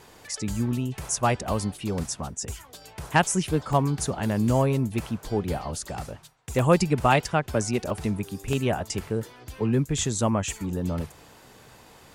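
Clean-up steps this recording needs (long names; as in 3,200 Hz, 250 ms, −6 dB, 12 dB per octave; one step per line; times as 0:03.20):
repair the gap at 0:03.73/0:04.99/0:06.59/0:07.20/0:07.90/0:08.53, 1.4 ms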